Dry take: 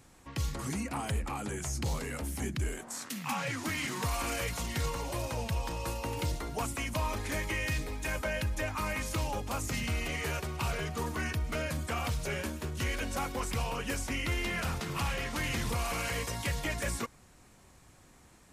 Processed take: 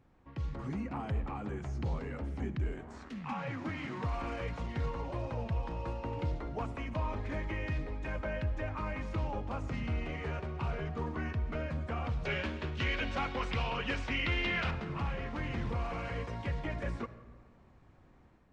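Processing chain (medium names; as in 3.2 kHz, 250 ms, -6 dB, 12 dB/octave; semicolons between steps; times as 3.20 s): 12.25–14.71 s: peaking EQ 3.3 kHz +14 dB 2.3 oct; level rider gain up to 4.5 dB; tape spacing loss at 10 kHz 36 dB; reverberation RT60 1.6 s, pre-delay 35 ms, DRR 14 dB; trim -5 dB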